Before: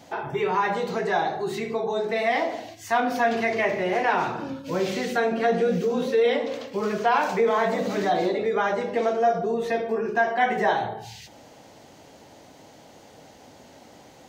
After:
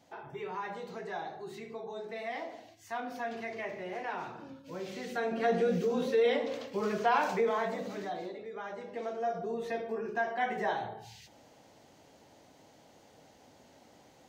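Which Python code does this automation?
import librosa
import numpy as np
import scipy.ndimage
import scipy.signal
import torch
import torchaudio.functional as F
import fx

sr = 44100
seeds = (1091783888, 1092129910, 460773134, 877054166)

y = fx.gain(x, sr, db=fx.line((4.86, -15.0), (5.51, -6.0), (7.29, -6.0), (8.46, -19.0), (9.53, -10.0)))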